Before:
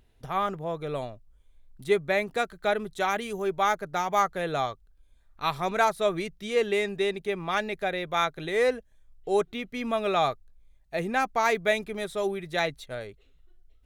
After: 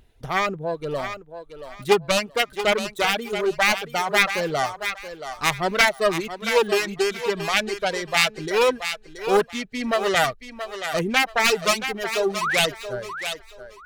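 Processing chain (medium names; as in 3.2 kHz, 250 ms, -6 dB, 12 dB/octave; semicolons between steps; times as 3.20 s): self-modulated delay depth 0.44 ms; reverb removal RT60 1.9 s; painted sound rise, 12.41–12.66 s, 930–3900 Hz -30 dBFS; on a send: thinning echo 677 ms, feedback 26%, high-pass 460 Hz, level -8.5 dB; on the sum: trim +6.5 dB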